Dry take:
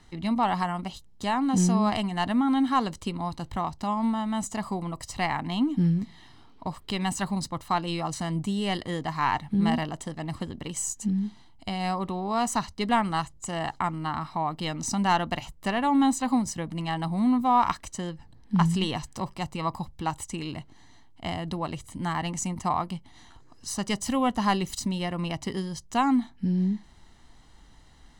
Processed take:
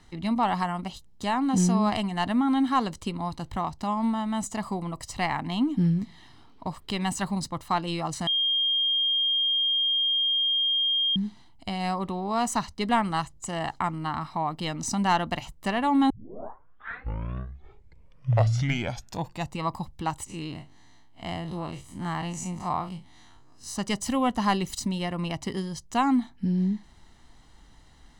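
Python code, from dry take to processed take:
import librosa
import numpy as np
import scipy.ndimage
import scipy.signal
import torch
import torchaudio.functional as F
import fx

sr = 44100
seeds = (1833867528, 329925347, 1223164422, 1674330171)

y = fx.spec_blur(x, sr, span_ms=82.0, at=(20.26, 23.76))
y = fx.edit(y, sr, fx.bleep(start_s=8.27, length_s=2.89, hz=3220.0, db=-21.5),
    fx.tape_start(start_s=16.1, length_s=3.51), tone=tone)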